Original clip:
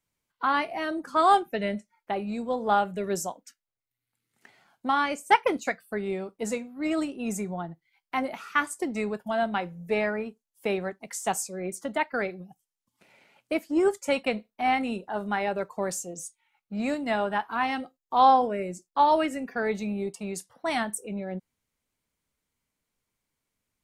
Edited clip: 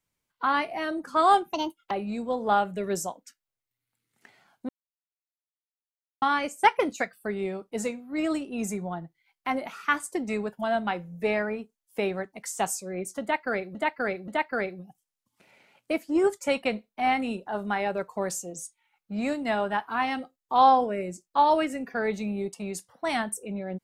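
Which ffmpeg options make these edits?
-filter_complex "[0:a]asplit=6[s0][s1][s2][s3][s4][s5];[s0]atrim=end=1.534[s6];[s1]atrim=start=1.53:end=2.11,asetpts=PTS-STARTPTS,asetrate=67473,aresample=44100[s7];[s2]atrim=start=2.106:end=4.89,asetpts=PTS-STARTPTS,afade=t=out:st=2.78:d=0.004:c=hsin,apad=pad_dur=1.53[s8];[s3]atrim=start=4.89:end=12.422,asetpts=PTS-STARTPTS,afade=t=in:d=0.004:c=hsin[s9];[s4]atrim=start=11.888:end=12.422[s10];[s5]atrim=start=11.888[s11];[s6][s7]acrossfade=d=0.004:c1=hsin:c2=hsin[s12];[s8][s9]concat=n=2:v=0:a=1[s13];[s12][s13]acrossfade=d=0.004:c1=hsin:c2=hsin[s14];[s14][s10]acrossfade=d=0.004:c1=hsin:c2=hsin[s15];[s15][s11]acrossfade=d=0.004:c1=hsin:c2=hsin"

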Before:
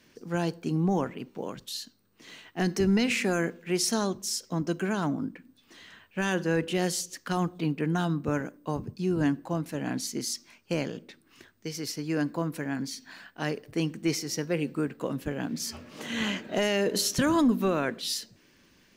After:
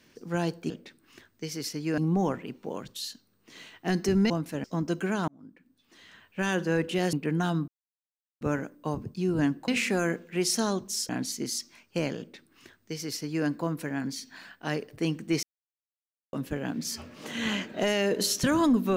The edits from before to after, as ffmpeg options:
-filter_complex "[0:a]asplit=12[s0][s1][s2][s3][s4][s5][s6][s7][s8][s9][s10][s11];[s0]atrim=end=0.702[s12];[s1]atrim=start=10.928:end=12.212[s13];[s2]atrim=start=0.698:end=3.022[s14];[s3]atrim=start=9.498:end=9.842[s15];[s4]atrim=start=4.428:end=5.07,asetpts=PTS-STARTPTS,afade=t=out:st=0.638:d=0.004:c=hsin[s16];[s5]atrim=start=5.07:end=6.922,asetpts=PTS-STARTPTS,afade=t=in:d=1.12[s17];[s6]atrim=start=7.678:end=8.23,asetpts=PTS-STARTPTS,afade=t=out:st=0.548:d=0.004:c=hsin,apad=pad_dur=0.73[s18];[s7]atrim=start=8.23:end=9.502,asetpts=PTS-STARTPTS,afade=t=in:d=0.004:c=hsin[s19];[s8]atrim=start=3.018:end=4.432[s20];[s9]atrim=start=9.838:end=14.18,asetpts=PTS-STARTPTS,afade=t=out:st=4.338:d=0.004:c=hsin[s21];[s10]atrim=start=14.18:end=15.08,asetpts=PTS-STARTPTS,volume=0[s22];[s11]atrim=start=15.08,asetpts=PTS-STARTPTS,afade=t=in:d=0.004:c=hsin[s23];[s12][s13]acrossfade=d=0.004:c1=hsin:c2=hsin[s24];[s24][s14]acrossfade=d=0.004:c1=hsin:c2=hsin[s25];[s25][s15]acrossfade=d=0.004:c1=hsin:c2=hsin[s26];[s16][s17]concat=n=2:v=0:a=1[s27];[s26][s27]acrossfade=d=0.004:c1=hsin:c2=hsin[s28];[s18][s19]concat=n=2:v=0:a=1[s29];[s28][s29]acrossfade=d=0.004:c1=hsin:c2=hsin[s30];[s30][s20]acrossfade=d=0.004:c1=hsin:c2=hsin[s31];[s21][s22][s23]concat=n=3:v=0:a=1[s32];[s31][s32]acrossfade=d=0.004:c1=hsin:c2=hsin"

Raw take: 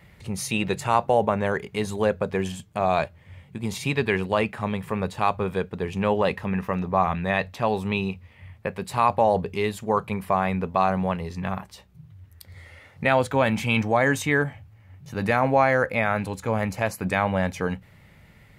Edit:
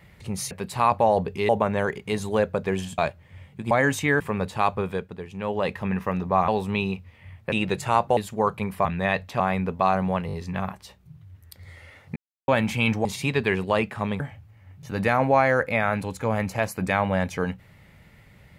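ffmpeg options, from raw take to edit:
-filter_complex "[0:a]asplit=20[s0][s1][s2][s3][s4][s5][s6][s7][s8][s9][s10][s11][s12][s13][s14][s15][s16][s17][s18][s19];[s0]atrim=end=0.512[s20];[s1]atrim=start=8.688:end=9.672[s21];[s2]atrim=start=1.158:end=2.652[s22];[s3]atrim=start=2.938:end=3.672[s23];[s4]atrim=start=13.938:end=14.432[s24];[s5]atrim=start=4.818:end=5.88,asetpts=PTS-STARTPTS,afade=t=out:st=0.572:d=0.49:silence=0.334965[s25];[s6]atrim=start=5.88:end=5.97,asetpts=PTS-STARTPTS,volume=0.335[s26];[s7]atrim=start=5.97:end=7.102,asetpts=PTS-STARTPTS,afade=t=in:d=0.49:silence=0.334965[s27];[s8]atrim=start=7.648:end=8.692[s28];[s9]atrim=start=0.508:end=1.162[s29];[s10]atrim=start=9.668:end=10.352[s30];[s11]atrim=start=7.098:end=7.652[s31];[s12]atrim=start=10.348:end=11.242[s32];[s13]atrim=start=11.218:end=11.242[s33];[s14]atrim=start=11.218:end=11.242[s34];[s15]atrim=start=11.218:end=13.05,asetpts=PTS-STARTPTS,afade=t=out:st=1.828:d=0.004:c=hsin[s35];[s16]atrim=start=13.05:end=13.37,asetpts=PTS-STARTPTS,volume=0[s36];[s17]atrim=start=13.37:end=13.942,asetpts=PTS-STARTPTS,afade=t=in:d=0.004:c=hsin[s37];[s18]atrim=start=3.668:end=4.822[s38];[s19]atrim=start=14.428[s39];[s20][s21]acrossfade=d=0.004:c1=hsin:c2=hsin[s40];[s40][s22]acrossfade=d=0.004:c1=hsin:c2=hsin[s41];[s41][s23]acrossfade=d=0.004:c1=hsin:c2=hsin[s42];[s42][s24]acrossfade=d=0.004:c1=hsin:c2=hsin[s43];[s25][s26][s27]concat=n=3:v=0:a=1[s44];[s43][s44]acrossfade=d=0.004:c1=hsin:c2=hsin[s45];[s45][s28]acrossfade=d=0.004:c1=hsin:c2=hsin[s46];[s46][s29]acrossfade=d=0.004:c1=hsin:c2=hsin[s47];[s47][s30]acrossfade=d=0.004:c1=hsin:c2=hsin[s48];[s48][s31]acrossfade=d=0.004:c1=hsin:c2=hsin[s49];[s49][s32]acrossfade=d=0.004:c1=hsin:c2=hsin[s50];[s50][s33]acrossfade=d=0.004:c1=hsin:c2=hsin[s51];[s51][s34]acrossfade=d=0.004:c1=hsin:c2=hsin[s52];[s35][s36][s37]concat=n=3:v=0:a=1[s53];[s52][s53]acrossfade=d=0.004:c1=hsin:c2=hsin[s54];[s54][s38]acrossfade=d=0.004:c1=hsin:c2=hsin[s55];[s55][s39]acrossfade=d=0.004:c1=hsin:c2=hsin"

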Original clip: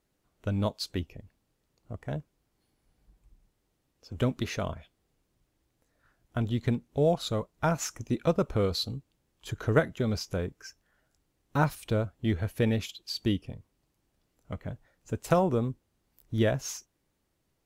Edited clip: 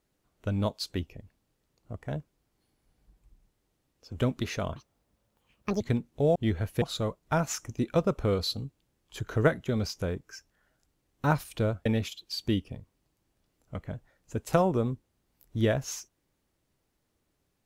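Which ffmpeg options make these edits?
-filter_complex "[0:a]asplit=6[s0][s1][s2][s3][s4][s5];[s0]atrim=end=4.764[s6];[s1]atrim=start=4.76:end=6.58,asetpts=PTS-STARTPTS,asetrate=76734,aresample=44100[s7];[s2]atrim=start=6.576:end=7.132[s8];[s3]atrim=start=12.168:end=12.632[s9];[s4]atrim=start=7.128:end=12.172[s10];[s5]atrim=start=12.628[s11];[s6][s7]acrossfade=d=0.004:c1=hsin:c2=hsin[s12];[s12][s8]acrossfade=d=0.004:c1=hsin:c2=hsin[s13];[s13][s9]acrossfade=d=0.004:c1=hsin:c2=hsin[s14];[s14][s10]acrossfade=d=0.004:c1=hsin:c2=hsin[s15];[s15][s11]acrossfade=d=0.004:c1=hsin:c2=hsin"

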